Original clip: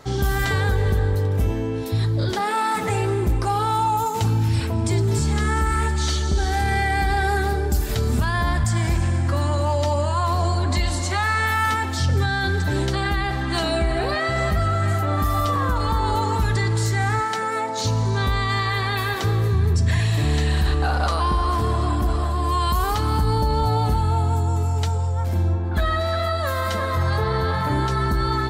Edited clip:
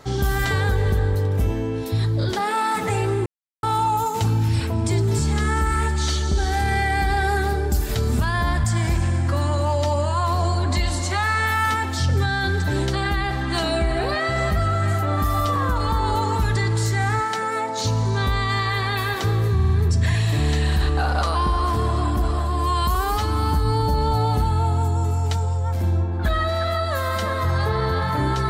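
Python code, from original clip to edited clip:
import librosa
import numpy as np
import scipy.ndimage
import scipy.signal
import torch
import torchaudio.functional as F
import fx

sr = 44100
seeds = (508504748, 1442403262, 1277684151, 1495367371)

y = fx.edit(x, sr, fx.silence(start_s=3.26, length_s=0.37),
    fx.stutter(start_s=19.55, slice_s=0.05, count=4),
    fx.stretch_span(start_s=22.8, length_s=0.66, factor=1.5), tone=tone)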